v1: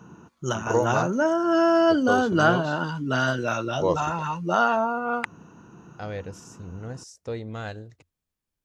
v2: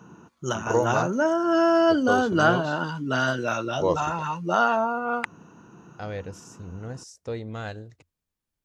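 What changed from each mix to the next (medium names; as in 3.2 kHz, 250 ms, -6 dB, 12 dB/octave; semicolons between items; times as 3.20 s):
background: add bass shelf 77 Hz -9.5 dB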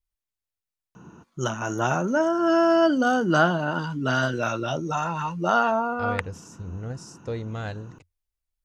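first voice: muted; background: entry +0.95 s; master: add bass shelf 81 Hz +11 dB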